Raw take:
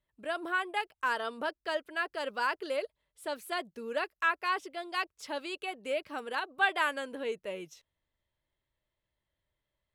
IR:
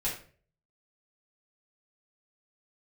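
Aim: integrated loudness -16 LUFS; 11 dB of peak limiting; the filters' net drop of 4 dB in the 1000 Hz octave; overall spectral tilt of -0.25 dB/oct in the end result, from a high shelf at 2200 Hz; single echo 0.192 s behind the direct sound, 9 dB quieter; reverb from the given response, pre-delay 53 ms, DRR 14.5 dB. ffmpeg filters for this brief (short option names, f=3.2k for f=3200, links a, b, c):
-filter_complex "[0:a]equalizer=f=1k:t=o:g=-4,highshelf=f=2.2k:g=-5,alimiter=level_in=4dB:limit=-24dB:level=0:latency=1,volume=-4dB,aecho=1:1:192:0.355,asplit=2[a][b];[1:a]atrim=start_sample=2205,adelay=53[c];[b][c]afir=irnorm=-1:irlink=0,volume=-20dB[d];[a][d]amix=inputs=2:normalize=0,volume=23dB"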